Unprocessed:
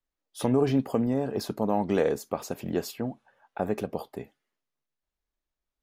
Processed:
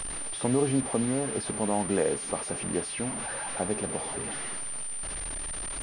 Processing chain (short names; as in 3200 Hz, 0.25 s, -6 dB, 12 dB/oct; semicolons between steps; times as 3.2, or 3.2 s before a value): delta modulation 64 kbps, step -29 dBFS; pulse-width modulation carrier 9100 Hz; gain -2 dB